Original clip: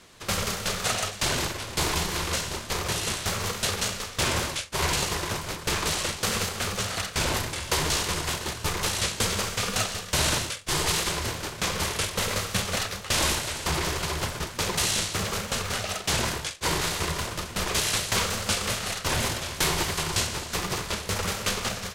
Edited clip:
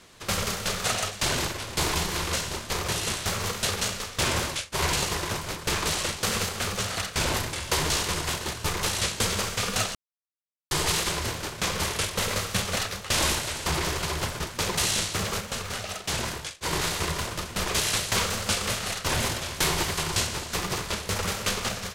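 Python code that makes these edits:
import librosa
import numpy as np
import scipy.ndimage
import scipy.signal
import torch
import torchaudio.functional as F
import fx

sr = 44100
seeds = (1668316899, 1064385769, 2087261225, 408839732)

y = fx.edit(x, sr, fx.silence(start_s=9.95, length_s=0.76),
    fx.clip_gain(start_s=15.4, length_s=1.33, db=-3.5), tone=tone)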